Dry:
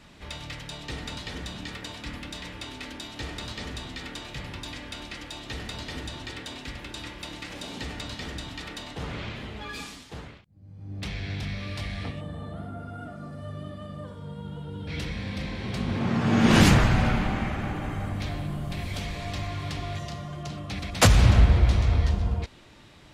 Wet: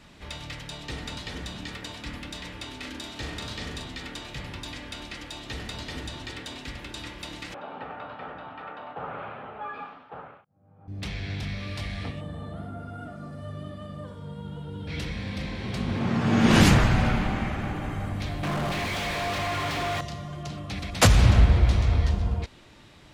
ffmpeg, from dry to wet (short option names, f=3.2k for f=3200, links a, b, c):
-filter_complex "[0:a]asettb=1/sr,asplit=3[a][b][c];[a]atrim=end=2.804[d];[b]atrim=start=2.8:end=3.84,asetpts=PTS-STARTPTS,afade=t=in:d=0.004:c=qsin,afade=t=out:st=1.036:d=0.004:c=qsin,asplit=2[e][f];[f]adelay=40,volume=-5.5dB[g];[e][g]amix=inputs=2:normalize=0,atrim=end_sample=45864[h];[c]atrim=start=3.836[i];[d][h]acrossfade=d=0.004:c1=hsin:c2=qsin[j];[j][i]acrossfade=d=0.004:c1=qsin:c2=hsin,asettb=1/sr,asplit=3[k][l][m];[k]atrim=end=7.544[n];[l]atrim=start=7.54:end=10.88,asetpts=PTS-STARTPTS,afade=t=in:d=0.004:c=qsin,afade=t=out:st=3.336:d=0.004:c=qsin,highpass=210,equalizer=f=210:t=q:w=4:g=-7,equalizer=f=320:t=q:w=4:g=-9,equalizer=f=560:t=q:w=4:g=4,equalizer=f=800:t=q:w=4:g=9,equalizer=f=1.3k:t=q:w=4:g=9,equalizer=f=2k:t=q:w=4:g=-9,lowpass=f=2.2k:w=0.5412,lowpass=f=2.2k:w=1.3066[o];[m]atrim=start=10.876[p];[n][o]acrossfade=d=0.004:c1=hsin:c2=qsin[q];[q][p]acrossfade=d=0.004:c1=qsin:c2=hsin,asettb=1/sr,asplit=3[r][s][t];[r]atrim=end=18.434[u];[s]atrim=start=18.43:end=20.01,asetpts=PTS-STARTPTS,afade=t=in:d=0.004:c=qsin,afade=t=out:st=1.576:d=0.004:c=qsin,asplit=2[v][w];[w]highpass=f=720:p=1,volume=37dB,asoftclip=type=tanh:threshold=-21dB[x];[v][x]amix=inputs=2:normalize=0,lowpass=f=2k:p=1,volume=-6dB[y];[t]atrim=start=20.006[z];[u][y]acrossfade=d=0.004:c1=hsin:c2=qsin[aa];[aa][z]acrossfade=d=0.004:c1=qsin:c2=hsin"